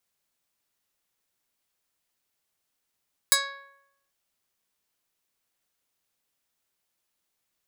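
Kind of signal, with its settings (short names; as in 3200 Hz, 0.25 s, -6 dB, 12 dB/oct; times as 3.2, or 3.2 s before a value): plucked string C#5, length 0.79 s, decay 0.83 s, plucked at 0.19, medium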